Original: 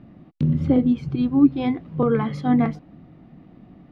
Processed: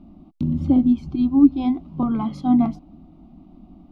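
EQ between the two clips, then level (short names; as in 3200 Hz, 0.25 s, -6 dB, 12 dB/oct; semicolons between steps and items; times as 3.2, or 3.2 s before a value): low shelf 130 Hz +11.5 dB; fixed phaser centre 470 Hz, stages 6; 0.0 dB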